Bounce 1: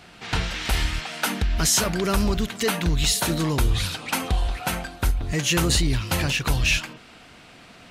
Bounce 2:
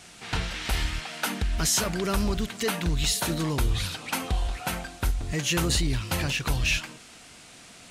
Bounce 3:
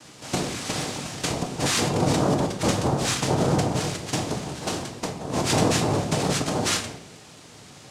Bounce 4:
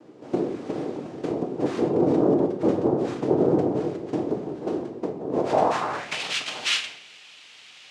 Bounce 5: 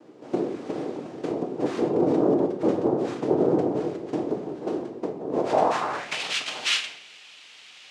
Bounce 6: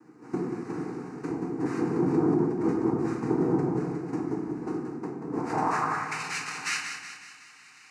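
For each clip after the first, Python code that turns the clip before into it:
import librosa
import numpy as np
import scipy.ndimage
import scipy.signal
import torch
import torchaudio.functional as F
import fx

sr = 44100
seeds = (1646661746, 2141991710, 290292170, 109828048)

y1 = fx.dmg_noise_band(x, sr, seeds[0], low_hz=1800.0, high_hz=9500.0, level_db=-48.0)
y1 = y1 * 10.0 ** (-4.0 / 20.0)
y2 = fx.noise_vocoder(y1, sr, seeds[1], bands=2)
y2 = fx.low_shelf(y2, sr, hz=350.0, db=10.5)
y2 = fx.room_shoebox(y2, sr, seeds[2], volume_m3=160.0, walls='mixed', distance_m=0.5)
y3 = fx.filter_sweep_bandpass(y2, sr, from_hz=370.0, to_hz=2800.0, start_s=5.32, end_s=6.21, q=2.4)
y3 = y3 * 10.0 ** (8.0 / 20.0)
y4 = fx.low_shelf(y3, sr, hz=120.0, db=-9.0)
y5 = fx.fixed_phaser(y4, sr, hz=1400.0, stages=4)
y5 = fx.echo_feedback(y5, sr, ms=186, feedback_pct=52, wet_db=-8.5)
y5 = fx.room_shoebox(y5, sr, seeds[3], volume_m3=180.0, walls='mixed', distance_m=0.52)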